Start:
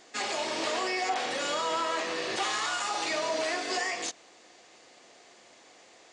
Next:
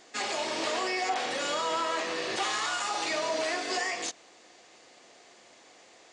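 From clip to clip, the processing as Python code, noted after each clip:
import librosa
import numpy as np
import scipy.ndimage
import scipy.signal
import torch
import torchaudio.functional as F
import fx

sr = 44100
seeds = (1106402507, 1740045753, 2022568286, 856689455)

y = x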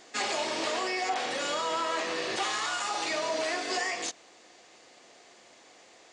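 y = fx.rider(x, sr, range_db=10, speed_s=0.5)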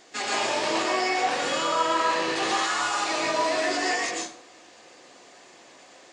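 y = fx.rev_plate(x, sr, seeds[0], rt60_s=0.54, hf_ratio=0.65, predelay_ms=105, drr_db=-4.0)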